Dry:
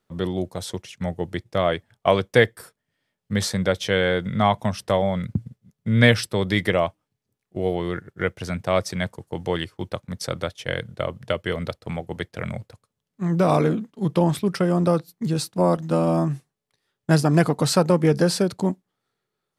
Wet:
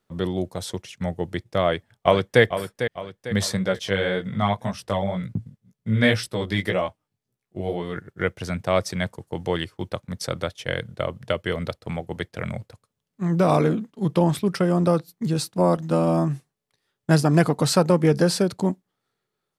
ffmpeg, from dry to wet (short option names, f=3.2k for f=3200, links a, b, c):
-filter_complex "[0:a]asplit=2[a][b];[b]afade=t=in:st=1.6:d=0.01,afade=t=out:st=2.42:d=0.01,aecho=0:1:450|900|1350|1800|2250:0.334965|0.150734|0.0678305|0.0305237|0.0137357[c];[a][c]amix=inputs=2:normalize=0,asplit=3[d][e][f];[d]afade=t=out:st=3.57:d=0.02[g];[e]flanger=delay=15.5:depth=4.9:speed=1.9,afade=t=in:st=3.57:d=0.02,afade=t=out:st=7.95:d=0.02[h];[f]afade=t=in:st=7.95:d=0.02[i];[g][h][i]amix=inputs=3:normalize=0"